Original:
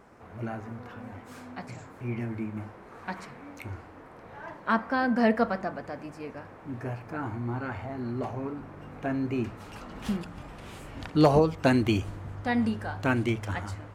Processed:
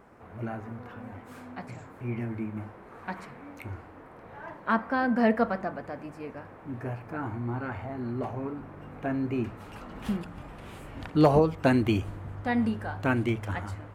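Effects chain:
parametric band 5,700 Hz −6.5 dB 1.4 octaves

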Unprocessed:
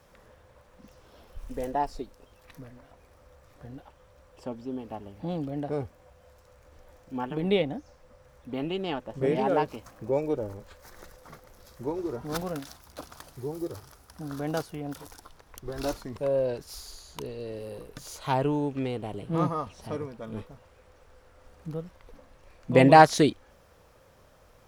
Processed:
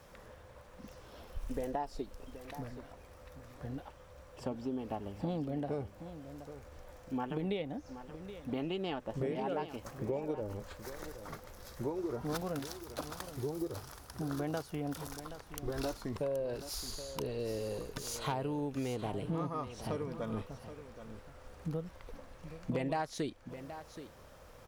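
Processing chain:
downward compressor 8 to 1, threshold −35 dBFS, peak gain reduction 24 dB
wave folding −26.5 dBFS
on a send: single-tap delay 775 ms −12 dB
on the sum: level +2 dB

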